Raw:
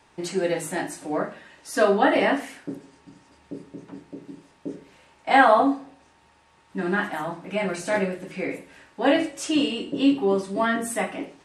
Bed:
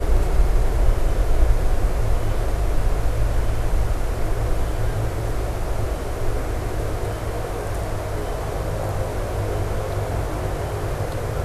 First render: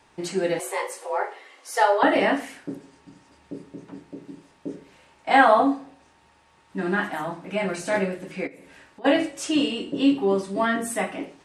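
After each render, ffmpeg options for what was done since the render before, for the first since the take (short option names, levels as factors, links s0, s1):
-filter_complex "[0:a]asettb=1/sr,asplit=3[s0][s1][s2];[s0]atrim=end=0.594[s3];[s1]atrim=start=0.59:end=2.03,asetpts=PTS-STARTPTS,afade=t=in:d=0.004:c=qsin,afade=t=out:st=1.436:d=0.004:c=qsin,afreqshift=210[s4];[s2]atrim=start=2.026[s5];[s3][s4]acrossfade=d=0.004:c1=hsin:c2=qsin[s6];[s6][s5]acrossfade=d=0.004:c1=qsin:c2=hsin,asplit=3[s7][s8][s9];[s7]afade=t=out:st=8.46:d=0.02[s10];[s8]acompressor=threshold=0.00794:ratio=6:attack=3.2:release=140:knee=1:detection=peak,afade=t=in:st=8.46:d=0.02,afade=t=out:st=9.04:d=0.02[s11];[s9]afade=t=in:st=9.04:d=0.02[s12];[s10][s11][s12]amix=inputs=3:normalize=0"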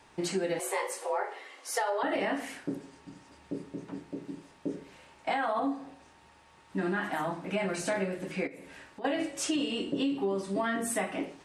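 -af "alimiter=limit=0.188:level=0:latency=1:release=65,acompressor=threshold=0.0398:ratio=4"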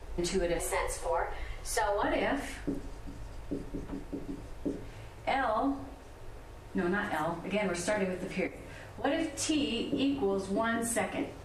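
-filter_complex "[1:a]volume=0.0631[s0];[0:a][s0]amix=inputs=2:normalize=0"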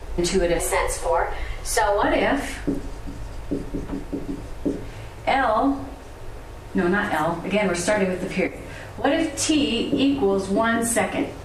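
-af "volume=3.16"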